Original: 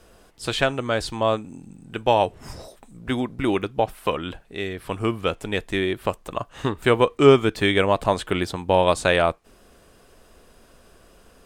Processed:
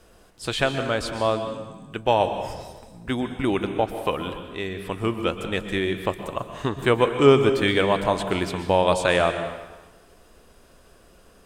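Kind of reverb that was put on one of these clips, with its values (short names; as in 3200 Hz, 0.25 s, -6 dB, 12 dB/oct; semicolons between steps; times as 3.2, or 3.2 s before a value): plate-style reverb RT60 1.2 s, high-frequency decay 0.9×, pre-delay 0.11 s, DRR 8 dB; gain -1.5 dB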